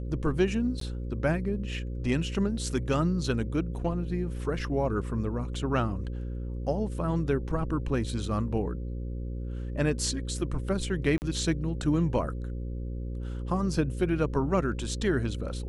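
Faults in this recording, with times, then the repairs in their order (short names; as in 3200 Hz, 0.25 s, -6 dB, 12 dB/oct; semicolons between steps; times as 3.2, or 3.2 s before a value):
buzz 60 Hz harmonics 9 -34 dBFS
0.8–0.81 gap 13 ms
11.18–11.22 gap 39 ms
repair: de-hum 60 Hz, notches 9; interpolate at 0.8, 13 ms; interpolate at 11.18, 39 ms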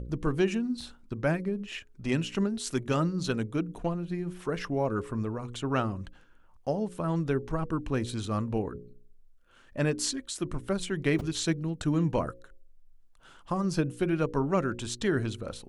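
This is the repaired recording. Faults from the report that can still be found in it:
none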